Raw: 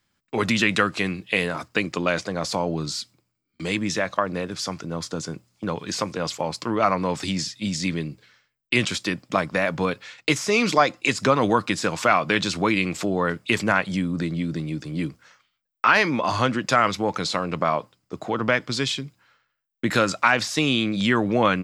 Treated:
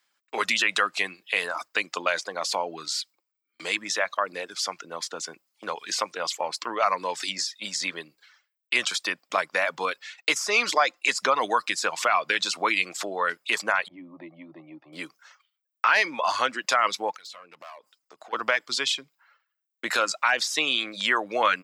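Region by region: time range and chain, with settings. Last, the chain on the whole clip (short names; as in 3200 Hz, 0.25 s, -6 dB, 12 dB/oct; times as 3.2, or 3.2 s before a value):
13.88–14.93 LPF 1900 Hz 24 dB/oct + fixed phaser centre 300 Hz, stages 8
17.11–18.33 overloaded stage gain 21 dB + compressor 8:1, threshold -40 dBFS
whole clip: reverb removal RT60 0.55 s; HPF 670 Hz 12 dB/oct; maximiser +10 dB; gain -8.5 dB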